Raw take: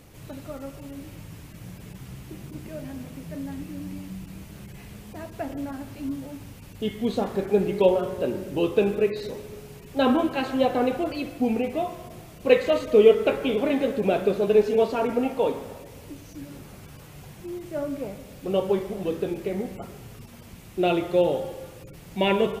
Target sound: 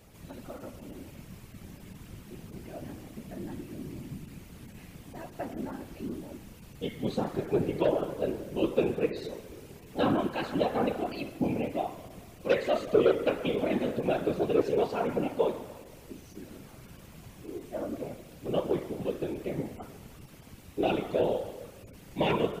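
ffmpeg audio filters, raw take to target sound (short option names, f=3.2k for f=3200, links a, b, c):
-af "aeval=exprs='0.708*sin(PI/2*1.78*val(0)/0.708)':c=same,afftfilt=real='hypot(re,im)*cos(2*PI*random(0))':imag='hypot(re,im)*sin(2*PI*random(1))':win_size=512:overlap=0.75,volume=-8dB"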